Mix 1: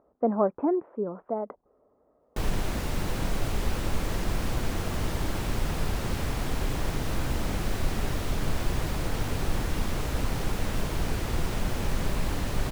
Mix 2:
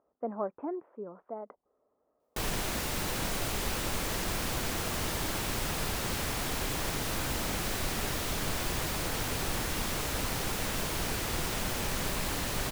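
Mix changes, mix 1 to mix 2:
speech −8.0 dB
master: add spectral tilt +2 dB per octave

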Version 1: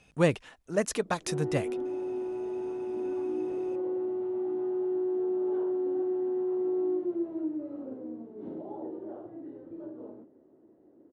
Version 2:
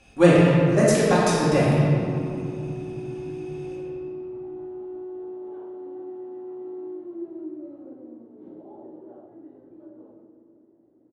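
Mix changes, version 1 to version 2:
background −6.5 dB
reverb: on, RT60 2.9 s

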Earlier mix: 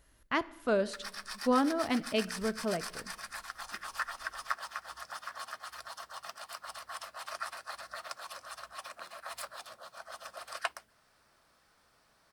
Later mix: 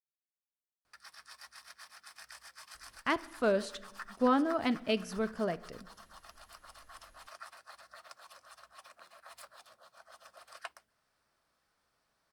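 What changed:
speech: entry +2.75 s
background −10.0 dB

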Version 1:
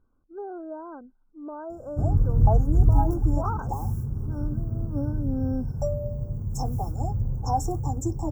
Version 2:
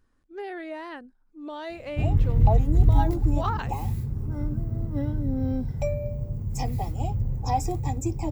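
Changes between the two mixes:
speech: remove moving average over 15 samples
master: remove linear-phase brick-wall band-stop 1,600–5,200 Hz

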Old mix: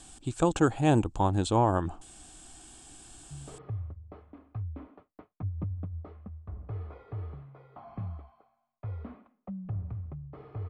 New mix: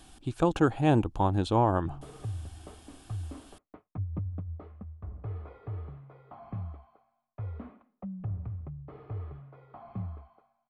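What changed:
background: entry −1.45 s
master: remove low-pass with resonance 7,900 Hz, resonance Q 5.4

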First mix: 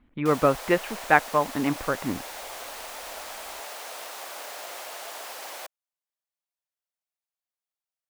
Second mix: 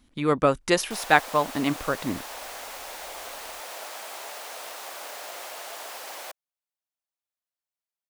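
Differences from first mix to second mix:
speech: remove low-pass filter 2,500 Hz 24 dB per octave
background: entry +0.65 s

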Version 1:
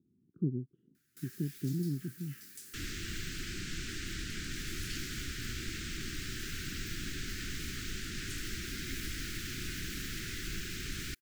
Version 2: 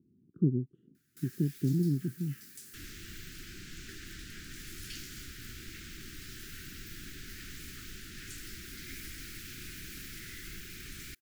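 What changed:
speech +5.5 dB
second sound −7.0 dB

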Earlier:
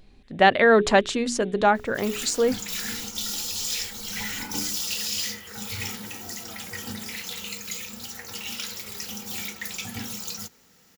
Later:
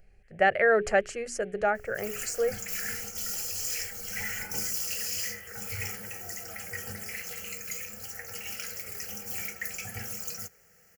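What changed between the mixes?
speech −4.0 dB
master: add phaser with its sweep stopped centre 1,000 Hz, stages 6

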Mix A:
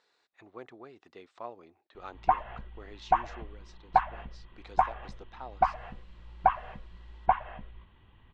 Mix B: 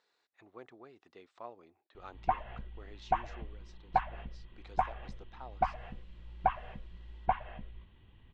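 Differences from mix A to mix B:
speech −5.0 dB
background: add parametric band 1,100 Hz −8 dB 1.5 octaves

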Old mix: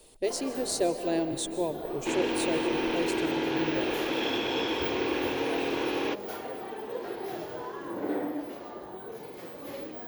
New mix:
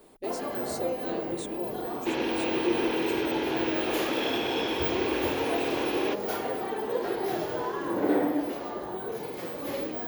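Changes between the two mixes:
speech −6.5 dB
first sound +7.5 dB
reverb: off

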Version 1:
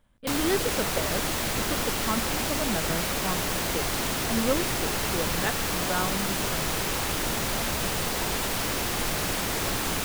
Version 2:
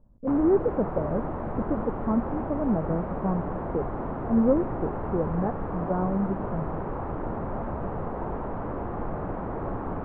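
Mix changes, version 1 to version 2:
speech: add tilt shelving filter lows +8.5 dB, about 860 Hz
master: add low-pass filter 1,100 Hz 24 dB per octave

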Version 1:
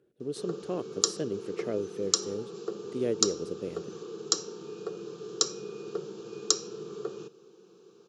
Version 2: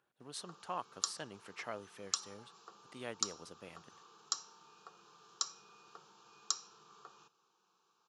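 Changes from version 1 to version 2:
background −10.5 dB
master: add low shelf with overshoot 620 Hz −13.5 dB, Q 3

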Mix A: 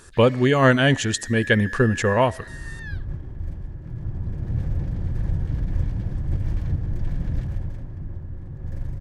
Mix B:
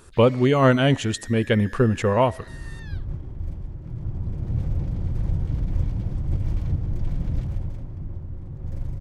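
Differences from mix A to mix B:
speech: add parametric band 6,100 Hz −7 dB 1.5 octaves
master: add parametric band 1,700 Hz −11.5 dB 0.2 octaves

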